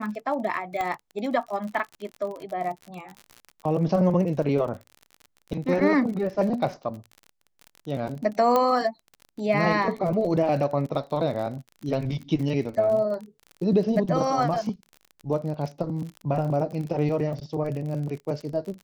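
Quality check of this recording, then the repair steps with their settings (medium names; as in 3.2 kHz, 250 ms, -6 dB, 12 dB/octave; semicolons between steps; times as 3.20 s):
crackle 44 per s -33 dBFS
0.81 s: pop -16 dBFS
8.56 s: pop -10 dBFS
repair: de-click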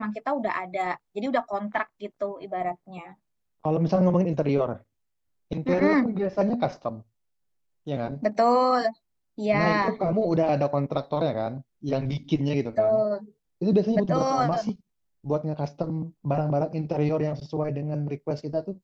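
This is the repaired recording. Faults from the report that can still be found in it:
0.81 s: pop
8.56 s: pop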